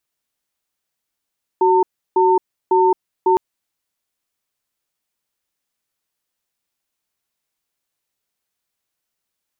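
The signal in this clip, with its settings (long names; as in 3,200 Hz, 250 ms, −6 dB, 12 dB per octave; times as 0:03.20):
tone pair in a cadence 373 Hz, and 905 Hz, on 0.22 s, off 0.33 s, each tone −13.5 dBFS 1.76 s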